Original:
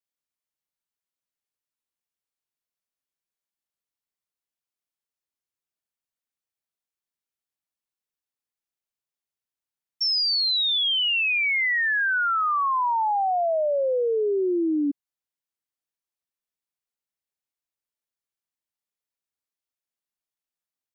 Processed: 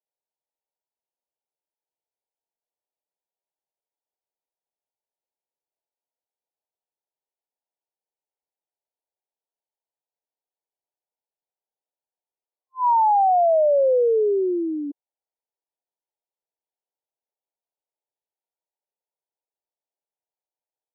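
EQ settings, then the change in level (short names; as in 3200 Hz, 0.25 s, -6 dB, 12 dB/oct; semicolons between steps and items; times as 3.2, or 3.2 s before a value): HPF 400 Hz 24 dB/oct; brick-wall FIR low-pass 1000 Hz; +6.0 dB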